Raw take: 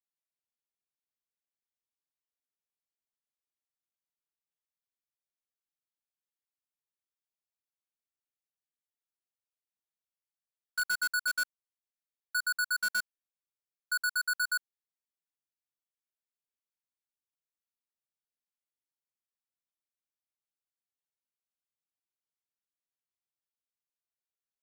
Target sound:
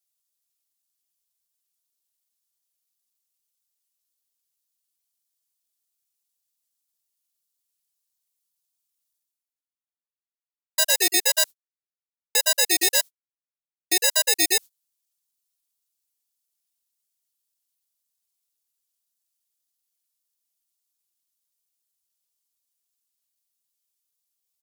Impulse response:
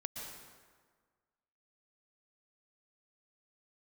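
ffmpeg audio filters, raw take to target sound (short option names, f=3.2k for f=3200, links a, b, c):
-filter_complex "[0:a]asplit=3[a][b][c];[b]asetrate=33038,aresample=44100,atempo=1.33484,volume=-2dB[d];[c]asetrate=35002,aresample=44100,atempo=1.25992,volume=-10dB[e];[a][d][e]amix=inputs=3:normalize=0,agate=range=-55dB:threshold=-36dB:ratio=16:detection=peak,acrossover=split=960[f][g];[g]aexciter=amount=2.4:drive=9.4:freq=3.4k[h];[f][h]amix=inputs=2:normalize=0,aecho=1:1:4.5:0.96,areverse,acompressor=mode=upward:threshold=-39dB:ratio=2.5,areverse,aeval=exprs='val(0)*sin(2*PI*630*n/s+630*0.25/1.8*sin(2*PI*1.8*n/s))':c=same,volume=1dB"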